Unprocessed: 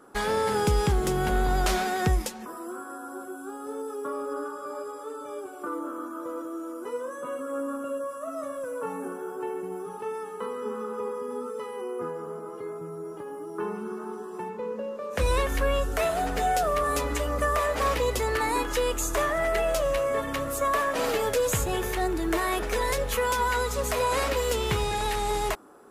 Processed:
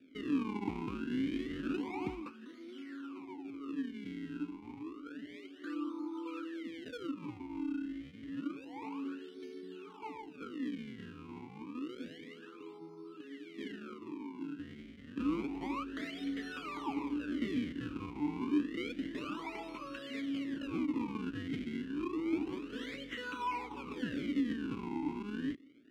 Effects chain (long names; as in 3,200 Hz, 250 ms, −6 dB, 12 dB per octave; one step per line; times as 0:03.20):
0:06.05–0:07.40: comb filter 2.2 ms, depth 90%
sample-and-hold swept by an LFO 42×, swing 160% 0.29 Hz
formant filter swept between two vowels i-u 0.74 Hz
level +1.5 dB